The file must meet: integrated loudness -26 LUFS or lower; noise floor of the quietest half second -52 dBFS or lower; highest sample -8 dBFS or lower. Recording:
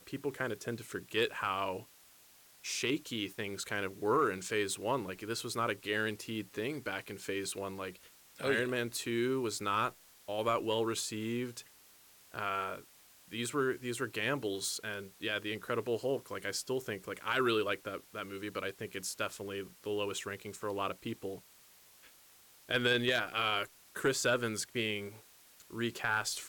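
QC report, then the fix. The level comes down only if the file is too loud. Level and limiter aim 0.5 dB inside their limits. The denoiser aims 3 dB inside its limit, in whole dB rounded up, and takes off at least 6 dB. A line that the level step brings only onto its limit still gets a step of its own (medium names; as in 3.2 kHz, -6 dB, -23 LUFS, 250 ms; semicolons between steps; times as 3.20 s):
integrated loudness -35.5 LUFS: pass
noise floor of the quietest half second -61 dBFS: pass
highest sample -21.0 dBFS: pass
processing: none needed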